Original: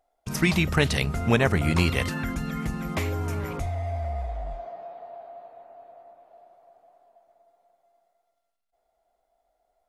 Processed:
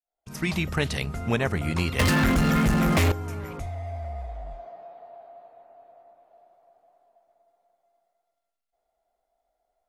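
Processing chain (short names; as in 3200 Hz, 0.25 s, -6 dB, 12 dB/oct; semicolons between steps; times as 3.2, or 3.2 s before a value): opening faded in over 0.54 s; 1.99–3.12 sample leveller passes 5; gain -4 dB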